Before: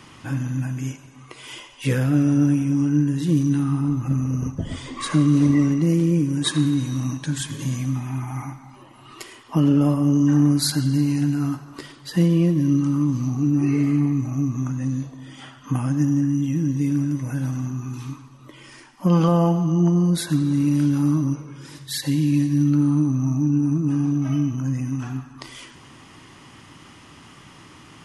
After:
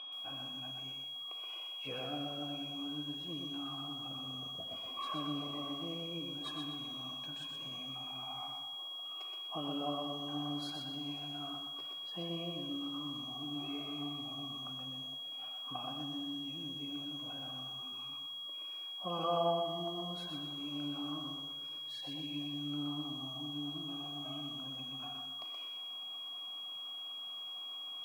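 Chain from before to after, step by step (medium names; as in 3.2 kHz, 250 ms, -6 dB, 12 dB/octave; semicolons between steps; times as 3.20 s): whistle 3.3 kHz -23 dBFS; vowel filter a; bit-crushed delay 124 ms, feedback 35%, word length 10-bit, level -4 dB; trim -2.5 dB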